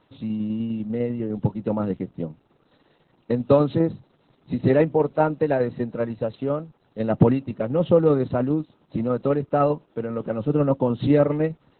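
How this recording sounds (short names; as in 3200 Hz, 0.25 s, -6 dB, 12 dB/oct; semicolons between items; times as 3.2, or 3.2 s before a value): tremolo saw down 10 Hz, depth 40%; Opus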